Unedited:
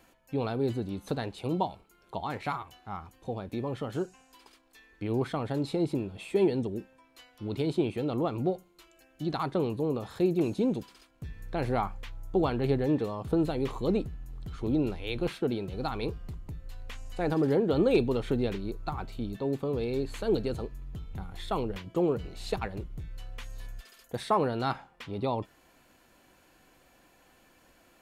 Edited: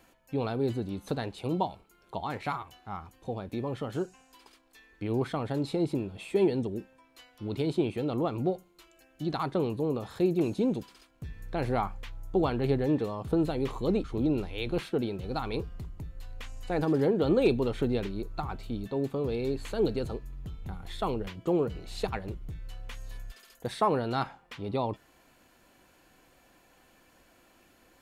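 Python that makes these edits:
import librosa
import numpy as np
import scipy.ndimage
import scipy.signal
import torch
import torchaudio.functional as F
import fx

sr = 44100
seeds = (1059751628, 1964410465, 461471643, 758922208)

y = fx.edit(x, sr, fx.cut(start_s=14.04, length_s=0.49), tone=tone)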